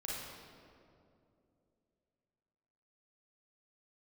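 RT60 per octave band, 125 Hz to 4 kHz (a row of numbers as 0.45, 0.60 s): 3.2, 3.3, 3.1, 2.2, 1.7, 1.4 s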